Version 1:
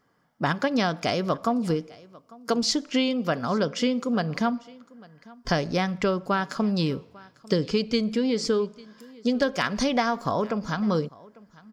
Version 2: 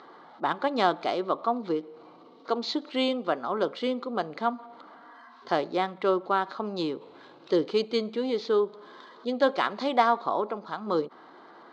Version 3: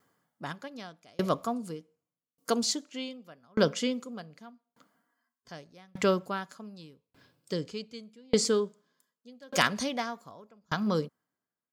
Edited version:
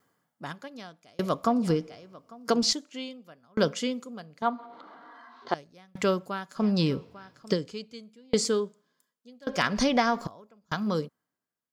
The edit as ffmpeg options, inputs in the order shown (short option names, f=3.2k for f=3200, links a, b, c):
-filter_complex "[0:a]asplit=3[a][b][c];[2:a]asplit=5[d][e][f][g][h];[d]atrim=end=1.442[i];[a]atrim=start=1.438:end=2.732[j];[e]atrim=start=2.728:end=4.422[k];[1:a]atrim=start=4.418:end=5.542[l];[f]atrim=start=5.538:end=6.64[m];[b]atrim=start=6.54:end=7.6[n];[g]atrim=start=7.5:end=9.472[o];[c]atrim=start=9.468:end=10.272[p];[h]atrim=start=10.268[q];[i][j]acrossfade=d=0.004:c1=hsin:c2=hsin[r];[r][k]acrossfade=d=0.004:c1=hsin:c2=hsin[s];[s][l]acrossfade=d=0.004:c1=hsin:c2=hsin[t];[t][m]acrossfade=d=0.004:c1=hsin:c2=hsin[u];[u][n]acrossfade=d=0.1:c1=tri:c2=tri[v];[v][o]acrossfade=d=0.1:c1=tri:c2=tri[w];[w][p]acrossfade=d=0.004:c1=hsin:c2=hsin[x];[x][q]acrossfade=d=0.004:c1=hsin:c2=hsin"